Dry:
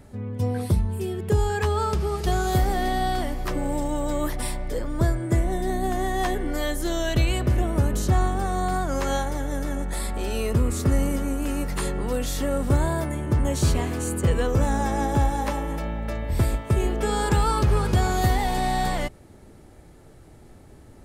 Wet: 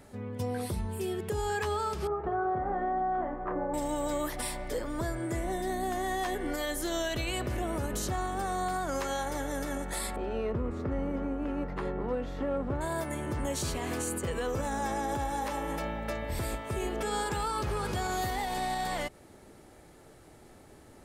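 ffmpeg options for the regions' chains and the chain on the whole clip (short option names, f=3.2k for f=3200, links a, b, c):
-filter_complex "[0:a]asettb=1/sr,asplit=3[a][b][c];[a]atrim=end=2.074[d];[b]atrim=start=2.07:end=3.74,asetpts=PTS-STARTPTS,afade=t=in:d=0.004:c=qsin,afade=t=out:st=1.666:d=0.004:c=qsin,lowpass=f=1.4k:w=0.5412,lowpass=f=1.4k:w=1.3066,lowshelf=f=180:g=-7,asplit=2[e][f];[f]adelay=27,volume=-5.5dB[g];[e][g]amix=inputs=2:normalize=0,atrim=end_sample=73647[h];[c]atrim=start=3.736[i];[d][h]acrossfade=d=0.004:c1=hsin:c2=qsin[j];[j][i]acrossfade=d=0.004:c1=qsin:c2=hsin,asettb=1/sr,asplit=3[k][l][m];[k]atrim=end=10.164[n];[l]atrim=start=10.16:end=12.81,asetpts=PTS-STARTPTS,afade=t=in:d=0.004:c=qsin,afade=t=out:st=2.646:d=0.004:c=qsin,equalizer=f=13k:w=2.9:g=13.5,adynamicsmooth=sensitivity=0.5:basefreq=1.2k[o];[m]atrim=start=12.806[p];[n][o]acrossfade=d=0.004:c1=hsin:c2=qsin[q];[q][p]acrossfade=d=0.004:c1=qsin:c2=hsin,lowshelf=f=210:g=-11.5,alimiter=limit=-23.5dB:level=0:latency=1:release=117"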